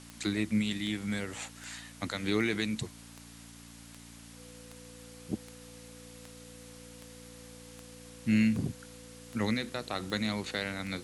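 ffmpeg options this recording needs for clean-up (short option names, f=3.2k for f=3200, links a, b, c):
-af "adeclick=t=4,bandreject=f=57.5:t=h:w=4,bandreject=f=115:t=h:w=4,bandreject=f=172.5:t=h:w=4,bandreject=f=230:t=h:w=4,bandreject=f=287.5:t=h:w=4,bandreject=f=500:w=30,afwtdn=0.0025"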